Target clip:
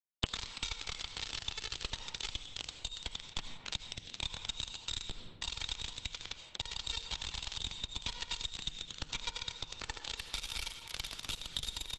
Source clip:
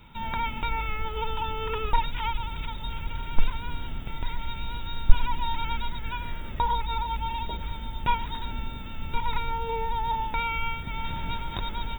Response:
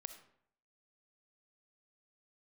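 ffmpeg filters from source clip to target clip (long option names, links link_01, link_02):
-filter_complex "[0:a]asettb=1/sr,asplit=3[link_01][link_02][link_03];[link_01]atrim=end=6.984[link_04];[link_02]atrim=start=6.98:end=9.43,asetpts=PTS-STARTPTS,afade=type=in:duration=0.004:curve=qsin,afade=type=out:start_time=2.446:duration=0.004:curve=qsin,aecho=1:1:130|221|284.7|329.3|360.5:0.631|0.398|0.251|0.158|0.1,atrim=end_sample=108045[link_05];[link_03]atrim=start=9.426[link_06];[link_04][link_05]acrossfade=duration=0.004:curve1=hsin:curve2=qsin[link_07];[link_07][link_06]acrossfade=duration=0.004:curve1=qsin:curve2=hsin,acompressor=threshold=-25dB:ratio=16,firequalizer=gain_entry='entry(200,0);entry(570,-5);entry(4500,11);entry(12000,6)':delay=0.05:min_phase=1,acrusher=bits=3:mix=0:aa=0.000001,equalizer=frequency=3600:width=1.3:gain=11.5,bandreject=frequency=153.9:width_type=h:width=4,bandreject=frequency=307.8:width_type=h:width=4,bandreject=frequency=461.7:width_type=h:width=4,bandreject=frequency=615.6:width_type=h:width=4,bandreject=frequency=769.5:width_type=h:width=4,bandreject=frequency=923.4:width_type=h:width=4,bandreject=frequency=1077.3:width_type=h:width=4,bandreject=frequency=1231.2:width_type=h:width=4,bandreject=frequency=1385.1:width_type=h:width=4,bandreject=frequency=1539:width_type=h:width=4,bandreject=frequency=1692.9:width_type=h:width=4,bandreject=frequency=1846.8:width_type=h:width=4,bandreject=frequency=2000.7:width_type=h:width=4,bandreject=frequency=2154.6:width_type=h:width=4,bandreject=frequency=2308.5:width_type=h:width=4,bandreject=frequency=2462.4:width_type=h:width=4,bandreject=frequency=2616.3:width_type=h:width=4,bandreject=frequency=2770.2:width_type=h:width=4,bandreject=frequency=2924.1:width_type=h:width=4,bandreject=frequency=3078:width_type=h:width=4[link_08];[1:a]atrim=start_sample=2205,asetrate=34398,aresample=44100[link_09];[link_08][link_09]afir=irnorm=-1:irlink=0,acrossover=split=130|5300[link_10][link_11][link_12];[link_10]acompressor=threshold=-45dB:ratio=4[link_13];[link_11]acompressor=threshold=-43dB:ratio=4[link_14];[link_12]acompressor=threshold=-44dB:ratio=4[link_15];[link_13][link_14][link_15]amix=inputs=3:normalize=0,volume=3.5dB" -ar 48000 -c:a libopus -b:a 12k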